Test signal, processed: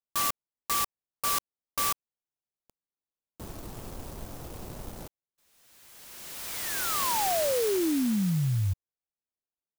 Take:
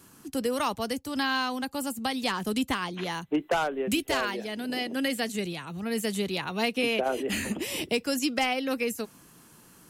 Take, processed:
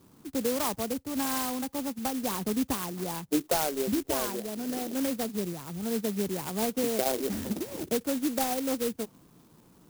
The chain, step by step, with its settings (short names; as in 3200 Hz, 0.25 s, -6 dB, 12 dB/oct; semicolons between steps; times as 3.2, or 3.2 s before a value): LPF 1300 Hz 12 dB/oct; clock jitter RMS 0.14 ms